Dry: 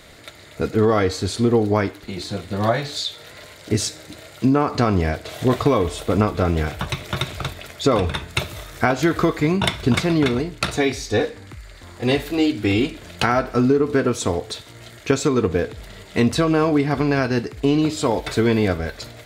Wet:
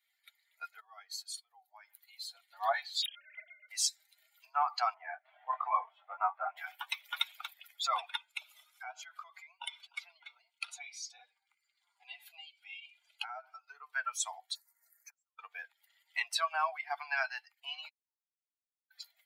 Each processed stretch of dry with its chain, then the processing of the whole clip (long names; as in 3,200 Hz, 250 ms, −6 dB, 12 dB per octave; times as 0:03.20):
0:00.80–0:02.35: high-shelf EQ 8,000 Hz +9 dB + downward compressor 5 to 1, threshold −27 dBFS
0:03.02–0:03.69: three sine waves on the formant tracks + hard clipping −26 dBFS
0:04.94–0:06.57: low-pass filter 1,700 Hz + double-tracking delay 23 ms −2.5 dB
0:08.16–0:13.68: downward compressor 3 to 1, threshold −26 dBFS + low-pass filter 11,000 Hz + notch filter 1,800 Hz, Q 7.4
0:14.55–0:15.39: high-shelf EQ 8,900 Hz +6 dB + gate with flip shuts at −16 dBFS, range −29 dB + Butterworth band-reject 3,100 Hz, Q 1.1
0:17.88–0:18.91: high-pass filter 780 Hz 24 dB per octave + gate with flip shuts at −28 dBFS, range −40 dB
whole clip: spectral dynamics exaggerated over time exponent 2; Butterworth high-pass 710 Hz 72 dB per octave; level −2.5 dB